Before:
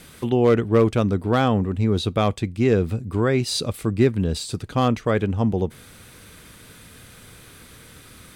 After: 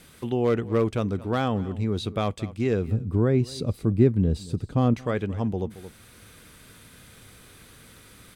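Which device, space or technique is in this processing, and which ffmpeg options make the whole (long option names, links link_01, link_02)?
ducked delay: -filter_complex "[0:a]asettb=1/sr,asplit=3[link_01][link_02][link_03];[link_01]atrim=end=2.884[link_04];[link_02]atrim=start=2.88:end=4.94,asetpts=PTS-STARTPTS,afade=type=in:duration=0.004:curve=qsin,afade=type=out:start_time=2.056:duration=0.004:curve=qsin,tiltshelf=frequency=700:gain=7.5[link_05];[link_03]atrim=start=4.936[link_06];[link_04][link_05]acrossfade=duration=0.004:curve1=hsin:curve2=qsin[link_07];[link_07][link_06]acrossfade=duration=0.004:curve1=qsin:curve2=hsin,asplit=3[link_08][link_09][link_10];[link_09]adelay=223,volume=-3dB[link_11];[link_10]apad=whole_len=378504[link_12];[link_11][link_12]sidechaincompress=threshold=-34dB:ratio=10:attack=33:release=461[link_13];[link_08][link_13]amix=inputs=2:normalize=0,volume=-6dB"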